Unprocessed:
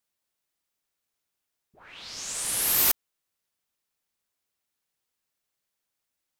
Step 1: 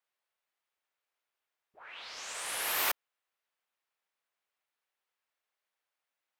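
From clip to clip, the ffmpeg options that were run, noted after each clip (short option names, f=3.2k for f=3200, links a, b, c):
-filter_complex "[0:a]acrossover=split=460 3200:gain=0.112 1 0.224[a][b][c];[a][b][c]amix=inputs=3:normalize=0,volume=1.5dB"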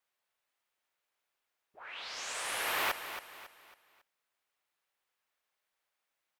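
-filter_complex "[0:a]acrossover=split=180|3600[a][b][c];[c]acompressor=threshold=-43dB:ratio=6[d];[a][b][d]amix=inputs=3:normalize=0,asoftclip=type=hard:threshold=-29dB,aecho=1:1:275|550|825|1100:0.299|0.113|0.0431|0.0164,volume=2.5dB"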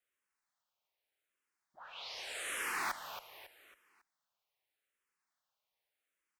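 -filter_complex "[0:a]asplit=2[a][b];[b]asoftclip=type=hard:threshold=-35.5dB,volume=-10.5dB[c];[a][c]amix=inputs=2:normalize=0,asplit=2[d][e];[e]afreqshift=-0.83[f];[d][f]amix=inputs=2:normalize=1,volume=-3dB"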